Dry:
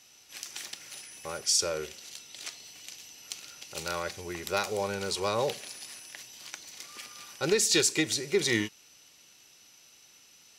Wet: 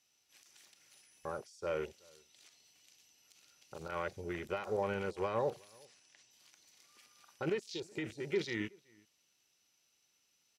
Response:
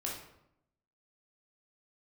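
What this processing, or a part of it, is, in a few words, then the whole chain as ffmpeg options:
de-esser from a sidechain: -filter_complex "[0:a]asplit=2[a][b];[b]highpass=f=4.7k:p=1,apad=whole_len=466844[c];[a][c]sidechaincompress=threshold=-40dB:ratio=12:attack=2.3:release=46,afwtdn=0.00794,asettb=1/sr,asplit=3[d][e][f];[d]atrim=end=5.854[g];[e]atrim=start=5.85:end=6.31,asetpts=PTS-STARTPTS,afade=t=in:d=0.004:c=qsin,afade=t=out:st=0.456:d=0.004:c=qsin,lowpass=f=8.4k:w=0.5412,lowpass=f=8.4k:w=1.3066[h];[f]atrim=start=6.306[i];[g][h]acrossfade=d=0.004:c1=hsin:c2=qsin[j];[j][i]acrossfade=d=0.004:c1=qsin:c2=hsin,asplit=2[k][l];[l]adelay=373.2,volume=-27dB,highshelf=f=4k:g=-8.4[m];[k][m]amix=inputs=2:normalize=0,volume=-1.5dB"

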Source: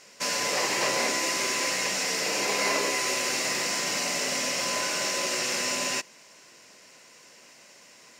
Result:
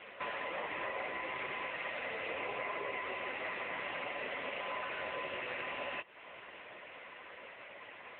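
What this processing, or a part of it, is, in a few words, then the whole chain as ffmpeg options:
voicemail: -filter_complex "[0:a]asplit=3[a][b][c];[a]afade=t=out:st=3.18:d=0.02[d];[b]equalizer=f=5k:t=o:w=0.79:g=-3.5,afade=t=in:st=3.18:d=0.02,afade=t=out:st=3.79:d=0.02[e];[c]afade=t=in:st=3.79:d=0.02[f];[d][e][f]amix=inputs=3:normalize=0,highpass=350,lowpass=2.8k,acompressor=threshold=-43dB:ratio=12,volume=10dB" -ar 8000 -c:a libopencore_amrnb -b:a 6700

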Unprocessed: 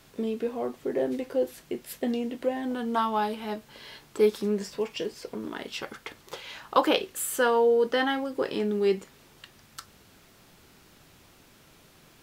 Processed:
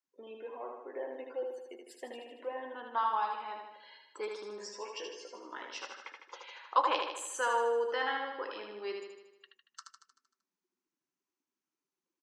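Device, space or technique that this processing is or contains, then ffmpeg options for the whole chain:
phone speaker on a table: -filter_complex "[0:a]asettb=1/sr,asplit=3[a][b][c];[a]atrim=end=4.584[d];[b]atrim=start=4.58:end=5.74,asetpts=PTS-STARTPTS,afade=t=in:d=0.004:c=qsin,afade=t=out:st=1.156:d=0.004:c=qsin,asplit=2[e][f];[f]adelay=16,volume=-4.5dB[g];[e][g]amix=inputs=2:normalize=0,atrim=end_sample=51156[h];[c]atrim=start=5.736[i];[d][h]acrossfade=d=0.004:c1=hsin:c2=qsin[j];[j][i]acrossfade=d=0.004:c1=qsin:c2=hsin,afftdn=nr=33:nf=-45,highpass=f=420:w=0.5412,highpass=f=420:w=1.3066,equalizer=f=430:t=q:w=4:g=-8,equalizer=f=660:t=q:w=4:g=-6,equalizer=f=1k:t=q:w=4:g=6,equalizer=f=3.5k:t=q:w=4:g=-5,equalizer=f=6.2k:t=q:w=4:g=8,lowpass=f=8k:w=0.5412,lowpass=f=8k:w=1.3066,aecho=1:1:77|154|231|308|385|462|539|616:0.596|0.34|0.194|0.11|0.0629|0.0358|0.0204|0.0116,volume=-7dB"

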